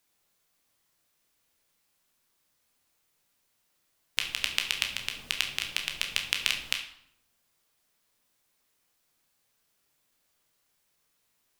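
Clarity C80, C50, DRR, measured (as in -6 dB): 11.5 dB, 8.0 dB, 2.5 dB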